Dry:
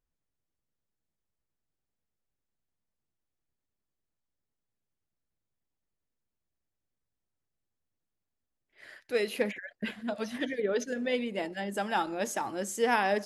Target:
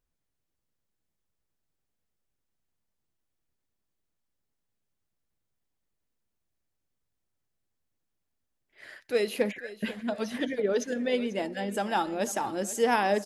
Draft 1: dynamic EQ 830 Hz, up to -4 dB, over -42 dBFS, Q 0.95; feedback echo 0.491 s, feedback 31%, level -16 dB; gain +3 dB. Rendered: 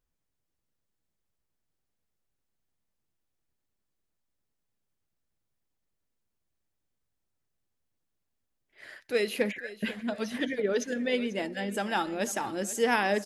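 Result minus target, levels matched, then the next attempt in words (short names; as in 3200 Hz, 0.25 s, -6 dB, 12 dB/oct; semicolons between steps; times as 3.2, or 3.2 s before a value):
2000 Hz band +3.0 dB
dynamic EQ 1900 Hz, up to -4 dB, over -42 dBFS, Q 0.95; feedback echo 0.491 s, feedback 31%, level -16 dB; gain +3 dB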